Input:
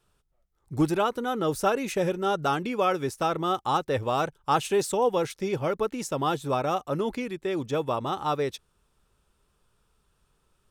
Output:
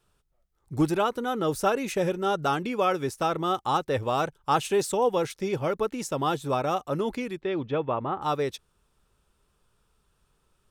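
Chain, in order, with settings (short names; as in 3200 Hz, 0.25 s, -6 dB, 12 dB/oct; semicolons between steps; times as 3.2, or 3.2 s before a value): 7.39–8.21 LPF 4700 Hz -> 2000 Hz 24 dB/oct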